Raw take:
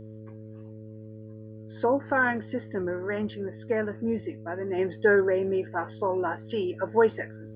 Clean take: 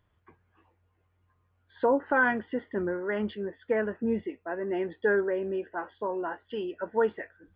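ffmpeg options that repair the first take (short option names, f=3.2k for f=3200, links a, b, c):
-af "bandreject=f=108.7:t=h:w=4,bandreject=f=217.4:t=h:w=4,bandreject=f=326.1:t=h:w=4,bandreject=f=434.8:t=h:w=4,bandreject=f=543.5:t=h:w=4,asetnsamples=n=441:p=0,asendcmd='4.78 volume volume -4.5dB',volume=0dB"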